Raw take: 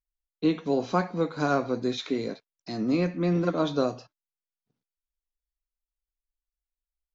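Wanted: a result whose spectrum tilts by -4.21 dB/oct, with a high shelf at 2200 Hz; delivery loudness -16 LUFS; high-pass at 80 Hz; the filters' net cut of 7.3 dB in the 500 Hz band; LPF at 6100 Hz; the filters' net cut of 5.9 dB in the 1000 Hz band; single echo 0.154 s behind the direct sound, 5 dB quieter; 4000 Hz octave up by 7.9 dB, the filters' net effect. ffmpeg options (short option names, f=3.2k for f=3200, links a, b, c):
-af "highpass=80,lowpass=6.1k,equalizer=f=500:t=o:g=-8.5,equalizer=f=1k:t=o:g=-6.5,highshelf=f=2.2k:g=3,equalizer=f=4k:t=o:g=7,aecho=1:1:154:0.562,volume=13dB"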